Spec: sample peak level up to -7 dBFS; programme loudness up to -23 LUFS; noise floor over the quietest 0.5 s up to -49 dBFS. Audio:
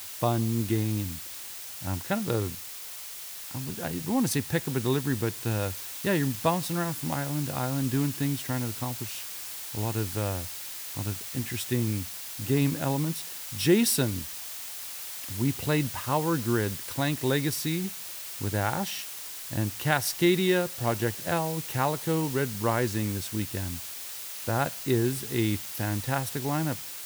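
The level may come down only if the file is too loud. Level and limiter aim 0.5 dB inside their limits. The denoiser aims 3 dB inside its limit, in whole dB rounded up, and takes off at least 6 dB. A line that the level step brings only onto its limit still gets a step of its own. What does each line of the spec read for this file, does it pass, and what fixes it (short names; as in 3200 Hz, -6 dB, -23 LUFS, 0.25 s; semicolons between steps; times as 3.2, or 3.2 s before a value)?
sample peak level -8.5 dBFS: OK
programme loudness -29.0 LUFS: OK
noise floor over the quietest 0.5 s -40 dBFS: fail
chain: denoiser 12 dB, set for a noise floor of -40 dBFS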